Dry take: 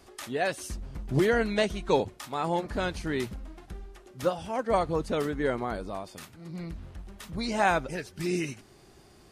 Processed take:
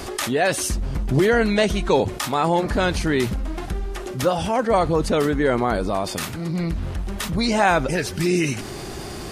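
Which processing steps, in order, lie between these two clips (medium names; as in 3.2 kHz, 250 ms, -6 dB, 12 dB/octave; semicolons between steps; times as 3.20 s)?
level flattener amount 50%; trim +5 dB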